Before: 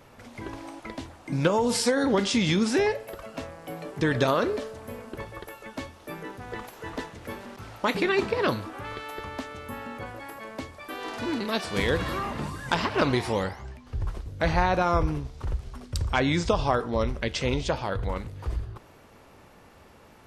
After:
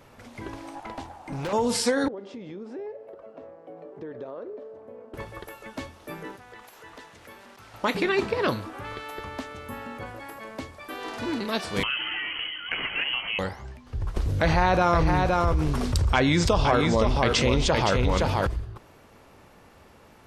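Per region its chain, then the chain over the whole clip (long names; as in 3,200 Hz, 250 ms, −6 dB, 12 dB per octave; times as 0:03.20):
0:00.75–0:01.53: parametric band 820 Hz +15 dB 0.57 octaves + tube saturation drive 28 dB, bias 0.55
0:02.08–0:05.14: resonant band-pass 470 Hz, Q 1.6 + downward compressor 2.5 to 1, threshold −39 dBFS
0:06.36–0:07.74: low-shelf EQ 500 Hz −10.5 dB + downward compressor 2 to 1, threshold −46 dBFS
0:11.83–0:13.39: voice inversion scrambler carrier 3,100 Hz + downward compressor 2 to 1, threshold −27 dBFS
0:14.16–0:18.47: single-tap delay 517 ms −6.5 dB + envelope flattener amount 70%
whole clip: no processing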